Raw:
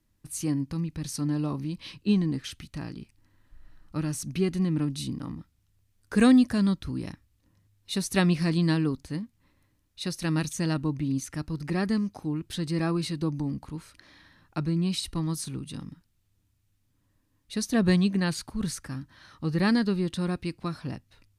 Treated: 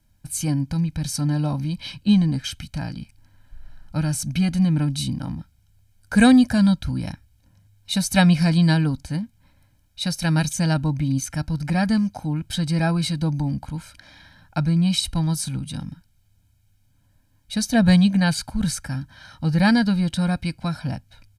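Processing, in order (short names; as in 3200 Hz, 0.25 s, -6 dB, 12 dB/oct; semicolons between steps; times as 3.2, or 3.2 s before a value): comb 1.3 ms, depth 98%; gain +4.5 dB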